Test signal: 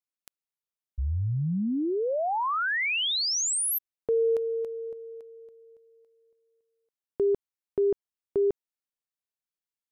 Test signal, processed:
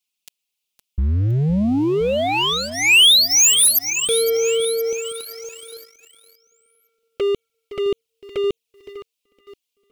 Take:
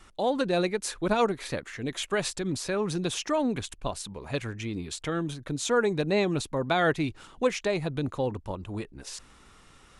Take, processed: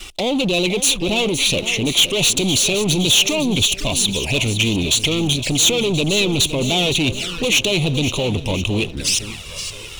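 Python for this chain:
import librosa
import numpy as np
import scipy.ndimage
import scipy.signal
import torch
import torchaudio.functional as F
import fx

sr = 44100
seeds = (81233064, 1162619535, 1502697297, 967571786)

p1 = fx.over_compress(x, sr, threshold_db=-31.0, ratio=-0.5)
p2 = x + F.gain(torch.from_numpy(p1), -1.5).numpy()
p3 = 10.0 ** (-27.0 / 20.0) * np.tanh(p2 / 10.0 ** (-27.0 / 20.0))
p4 = fx.echo_feedback(p3, sr, ms=514, feedback_pct=53, wet_db=-12)
p5 = fx.env_flanger(p4, sr, rest_ms=4.8, full_db=-30.5)
p6 = fx.high_shelf_res(p5, sr, hz=2100.0, db=8.0, q=3.0)
p7 = fx.leveller(p6, sr, passes=2)
y = F.gain(torch.from_numpy(p7), 4.0).numpy()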